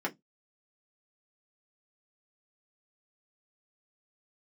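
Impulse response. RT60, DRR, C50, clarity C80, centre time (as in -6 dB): 0.15 s, -2.5 dB, 24.0 dB, 38.0 dB, 10 ms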